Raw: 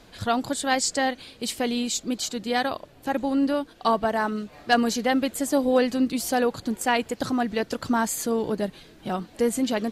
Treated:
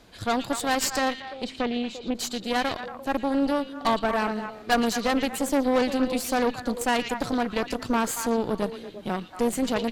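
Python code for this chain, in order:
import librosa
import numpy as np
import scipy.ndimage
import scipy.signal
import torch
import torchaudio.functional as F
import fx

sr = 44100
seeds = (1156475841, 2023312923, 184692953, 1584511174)

y = fx.env_lowpass_down(x, sr, base_hz=2400.0, full_db=-25.0, at=(1.19, 2.14), fade=0.02)
y = fx.echo_stepped(y, sr, ms=115, hz=3100.0, octaves=-1.4, feedback_pct=70, wet_db=-3.0)
y = fx.cheby_harmonics(y, sr, harmonics=(6,), levels_db=(-16,), full_scale_db=-9.0)
y = y * 10.0 ** (-2.5 / 20.0)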